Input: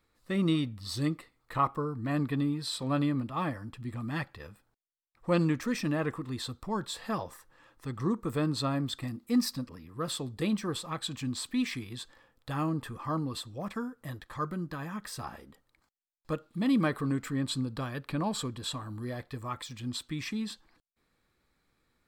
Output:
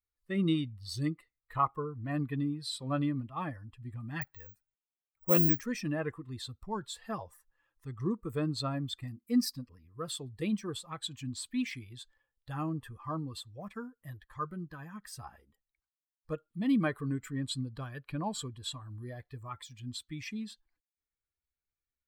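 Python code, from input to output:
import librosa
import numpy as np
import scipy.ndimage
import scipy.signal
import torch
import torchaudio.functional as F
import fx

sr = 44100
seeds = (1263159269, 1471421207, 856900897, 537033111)

y = fx.bin_expand(x, sr, power=1.5)
y = fx.resample_bad(y, sr, factor=2, down='none', up='zero_stuff', at=(4.21, 5.61))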